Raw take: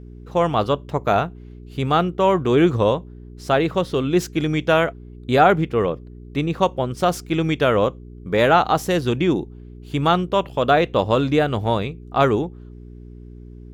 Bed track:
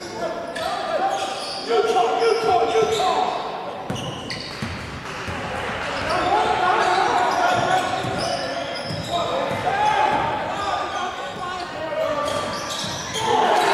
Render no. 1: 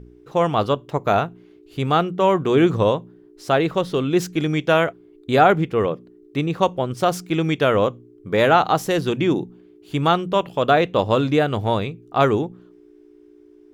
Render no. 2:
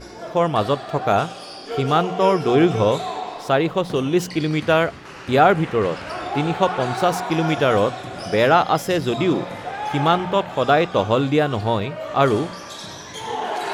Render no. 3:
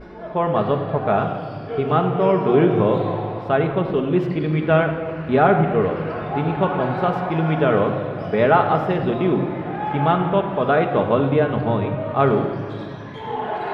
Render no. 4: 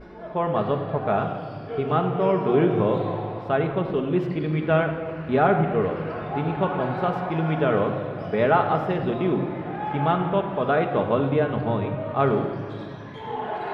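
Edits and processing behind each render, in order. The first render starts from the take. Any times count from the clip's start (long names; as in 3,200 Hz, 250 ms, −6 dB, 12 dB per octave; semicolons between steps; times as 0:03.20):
hum removal 60 Hz, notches 4
mix in bed track −8 dB
high-frequency loss of the air 490 metres; rectangular room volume 3,000 cubic metres, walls mixed, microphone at 1.4 metres
level −4 dB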